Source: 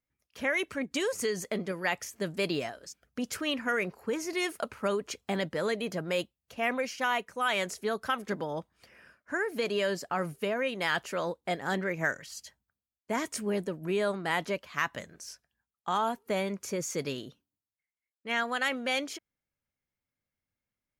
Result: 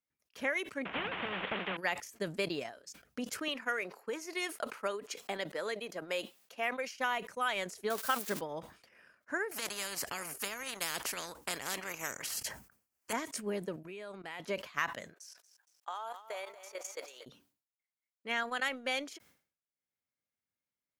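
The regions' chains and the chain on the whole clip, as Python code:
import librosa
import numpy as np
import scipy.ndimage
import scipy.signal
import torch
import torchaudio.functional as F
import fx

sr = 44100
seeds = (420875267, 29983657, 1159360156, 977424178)

y = fx.chain(x, sr, fx.delta_mod(bps=16000, step_db=-46.0),
    fx.peak_eq(hz=190.0, db=13.5, octaves=0.35),
    fx.spectral_comp(ratio=4.0), at=(0.85, 1.77))
y = fx.chain(y, sr, fx.highpass(hz=240.0, slope=12),
    fx.low_shelf(hz=360.0, db=-5.5), at=(3.48, 6.95))
y = fx.chain(y, sr, fx.crossing_spikes(level_db=-26.5),
    fx.peak_eq(hz=780.0, db=2.5, octaves=1.9), at=(7.9, 8.41))
y = fx.chain(y, sr, fx.peak_eq(hz=3700.0, db=-11.0, octaves=0.54),
    fx.spectral_comp(ratio=4.0), at=(9.51, 13.13))
y = fx.chain(y, sr, fx.peak_eq(hz=2500.0, db=7.0, octaves=0.45),
    fx.level_steps(step_db=13),
    fx.highpass(hz=130.0, slope=12), at=(13.76, 14.4))
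y = fx.chain(y, sr, fx.highpass(hz=520.0, slope=24),
    fx.level_steps(step_db=12),
    fx.echo_crushed(ms=233, feedback_pct=55, bits=10, wet_db=-10), at=(15.14, 17.26))
y = fx.highpass(y, sr, hz=210.0, slope=6)
y = fx.transient(y, sr, attack_db=3, sustain_db=-9)
y = fx.sustainer(y, sr, db_per_s=130.0)
y = y * librosa.db_to_amplitude(-5.0)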